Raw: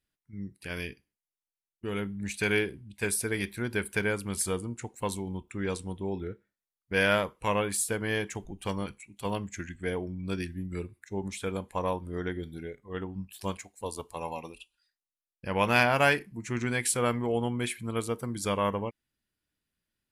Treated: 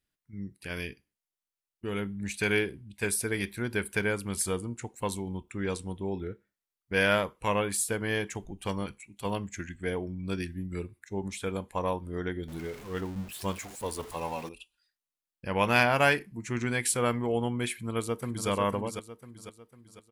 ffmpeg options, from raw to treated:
-filter_complex "[0:a]asettb=1/sr,asplit=3[s0][s1][s2];[s0]atrim=end=12.484[s3];[s1]atrim=start=12.48:end=14.49,asetpts=PTS-STARTPTS,afade=t=in:d=0.004:c=qsin,afade=t=out:st=2.006:d=0.004:c=qsin,aeval=exprs='val(0)+0.5*0.00944*sgn(val(0))':c=same[s4];[s2]atrim=start=14.486[s5];[s3][s4]acrossfade=d=0.004:c1=hsin:c2=qsin[s6];[s6][s5]acrossfade=d=0.004:c1=qsin:c2=hsin,asplit=2[s7][s8];[s8]afade=t=in:st=17.72:d=0.01,afade=t=out:st=18.49:d=0.01,aecho=0:1:500|1000|1500|2000|2500:0.446684|0.201008|0.0904534|0.040704|0.0183168[s9];[s7][s9]amix=inputs=2:normalize=0"

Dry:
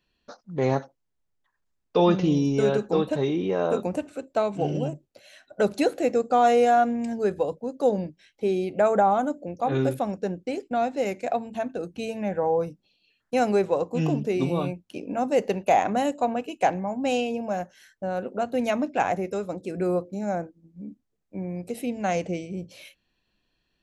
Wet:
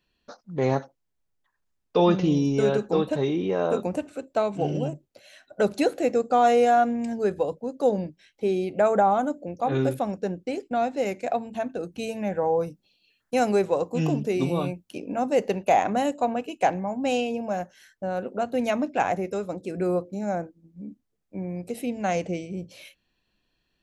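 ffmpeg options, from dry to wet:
-filter_complex "[0:a]asettb=1/sr,asplit=3[s0][s1][s2];[s0]atrim=end=11.924[s3];[s1]atrim=start=11.92:end=14.98,asetpts=PTS-STARTPTS,afade=t=in:d=0.004:c=qsin,afade=t=out:st=3.056:d=0.004:c=qsin,highshelf=f=7200:g=7[s4];[s2]atrim=start=14.976[s5];[s3][s4]acrossfade=d=0.004:c1=hsin:c2=qsin[s6];[s6][s5]acrossfade=d=0.004:c1=qsin:c2=hsin"

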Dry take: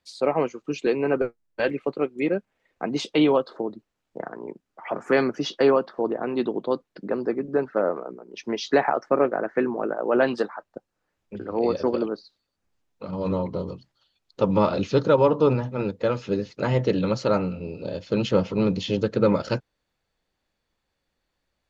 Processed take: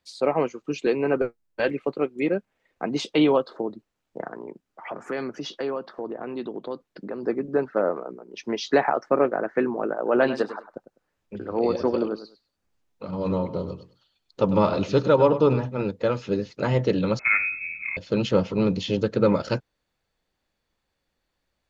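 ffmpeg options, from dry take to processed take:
-filter_complex "[0:a]asettb=1/sr,asplit=3[s0][s1][s2];[s0]atrim=end=4.414[s3];[s1]atrim=start=4.41:end=7.23,asetpts=PTS-STARTPTS,afade=t=in:d=0.004:c=qsin,afade=t=out:st=2.816:d=0.004:c=qsin,acompressor=threshold=0.0224:ratio=2:attack=3.2:release=140:knee=1:detection=peak[s4];[s2]atrim=start=7.226[s5];[s3][s4]acrossfade=d=0.004:c1=hsin:c2=qsin[s6];[s6][s5]acrossfade=d=0.004:c1=qsin:c2=hsin,asettb=1/sr,asplit=3[s7][s8][s9];[s7]atrim=end=9.964[s10];[s8]atrim=start=9.96:end=15.66,asetpts=PTS-STARTPTS,afade=t=in:d=0.004:c=qsin,afade=t=out:st=5.696:d=0.004:c=qsin,aecho=1:1:101|202:0.224|0.0448,atrim=end_sample=251370[s11];[s9]atrim=start=15.656[s12];[s10][s11]acrossfade=d=0.004:c1=hsin:c2=qsin[s13];[s13][s12]acrossfade=d=0.004:c1=qsin:c2=hsin,asettb=1/sr,asplit=3[s14][s15][s16];[s14]atrim=end=17.194[s17];[s15]atrim=start=17.19:end=17.97,asetpts=PTS-STARTPTS,afade=t=in:d=0.004:c=qsin,afade=t=out:st=0.776:d=0.004:c=qsin,lowpass=f=2300:t=q:w=0.5098,lowpass=f=2300:t=q:w=0.6013,lowpass=f=2300:t=q:w=0.9,lowpass=f=2300:t=q:w=2.563,afreqshift=-2700[s18];[s16]atrim=start=17.966[s19];[s17][s18]acrossfade=d=0.004:c1=hsin:c2=qsin[s20];[s20][s19]acrossfade=d=0.004:c1=qsin:c2=hsin"

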